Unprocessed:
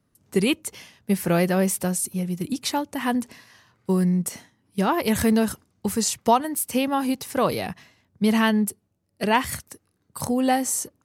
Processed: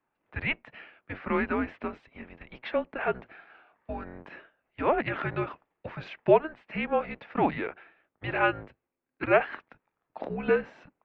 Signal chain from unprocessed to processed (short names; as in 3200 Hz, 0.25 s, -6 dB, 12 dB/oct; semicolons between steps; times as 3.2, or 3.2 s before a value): octaver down 2 oct, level +3 dB; mistuned SSB -310 Hz 600–2900 Hz